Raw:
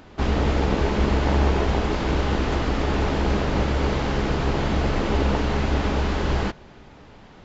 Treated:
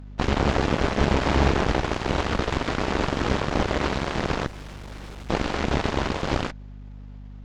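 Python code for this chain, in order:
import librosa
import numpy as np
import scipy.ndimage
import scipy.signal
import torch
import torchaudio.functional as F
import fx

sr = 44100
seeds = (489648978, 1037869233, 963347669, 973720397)

y = fx.clip_hard(x, sr, threshold_db=-27.5, at=(4.46, 5.3))
y = fx.cheby_harmonics(y, sr, harmonics=(7, 8), levels_db=(-15, -19), full_scale_db=-7.0)
y = fx.add_hum(y, sr, base_hz=50, snr_db=15)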